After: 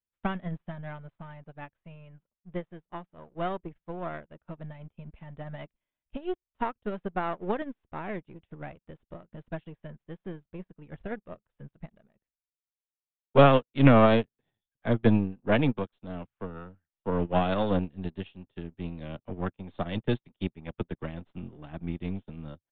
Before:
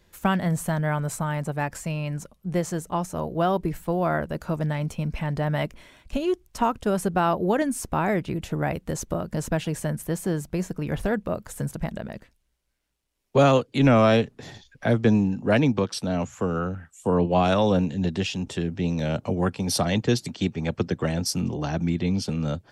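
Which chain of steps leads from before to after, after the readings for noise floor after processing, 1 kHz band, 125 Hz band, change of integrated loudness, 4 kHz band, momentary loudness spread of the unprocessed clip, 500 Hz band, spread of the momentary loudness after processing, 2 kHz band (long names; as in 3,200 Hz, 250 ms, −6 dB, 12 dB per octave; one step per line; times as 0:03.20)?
below −85 dBFS, −5.0 dB, −6.5 dB, −3.5 dB, −8.5 dB, 10 LU, −5.0 dB, 22 LU, −6.0 dB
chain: gain on one half-wave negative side −7 dB
downsampling to 8,000 Hz
expander for the loud parts 2.5 to 1, over −45 dBFS
level +4.5 dB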